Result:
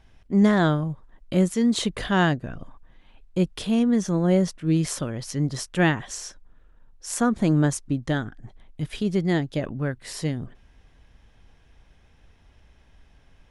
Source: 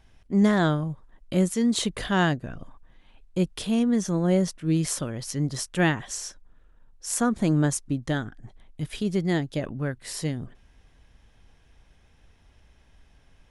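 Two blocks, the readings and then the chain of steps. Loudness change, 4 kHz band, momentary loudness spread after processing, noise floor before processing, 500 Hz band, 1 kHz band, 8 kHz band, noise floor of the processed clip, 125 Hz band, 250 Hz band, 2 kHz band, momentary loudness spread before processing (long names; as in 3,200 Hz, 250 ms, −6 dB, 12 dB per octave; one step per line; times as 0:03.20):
+2.0 dB, +0.5 dB, 14 LU, −58 dBFS, +2.0 dB, +2.0 dB, −2.0 dB, −57 dBFS, +2.0 dB, +2.0 dB, +1.5 dB, 12 LU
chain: high-shelf EQ 7,300 Hz −7.5 dB
level +2 dB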